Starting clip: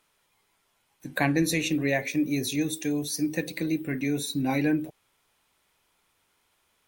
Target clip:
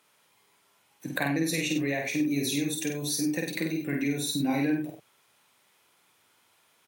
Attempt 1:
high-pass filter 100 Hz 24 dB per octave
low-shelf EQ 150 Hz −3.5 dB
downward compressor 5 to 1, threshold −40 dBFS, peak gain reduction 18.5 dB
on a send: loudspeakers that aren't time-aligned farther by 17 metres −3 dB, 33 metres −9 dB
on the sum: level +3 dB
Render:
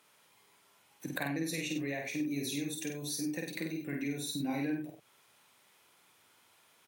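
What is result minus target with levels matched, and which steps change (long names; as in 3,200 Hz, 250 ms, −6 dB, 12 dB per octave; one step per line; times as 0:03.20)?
downward compressor: peak gain reduction +7.5 dB
change: downward compressor 5 to 1, threshold −30.5 dBFS, peak gain reduction 10.5 dB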